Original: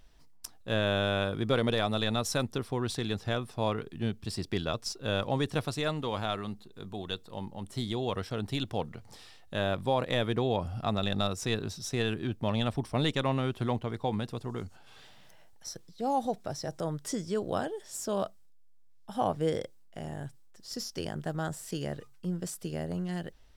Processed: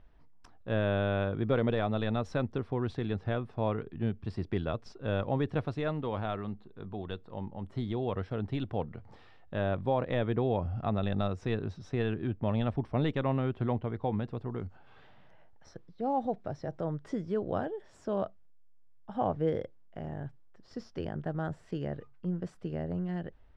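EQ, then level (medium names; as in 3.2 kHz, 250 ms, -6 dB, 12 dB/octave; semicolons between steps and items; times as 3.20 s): dynamic bell 1.1 kHz, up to -3 dB, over -46 dBFS, Q 1.3; low-pass 1.8 kHz 12 dB/octave; peaking EQ 88 Hz +3.5 dB 0.43 oct; 0.0 dB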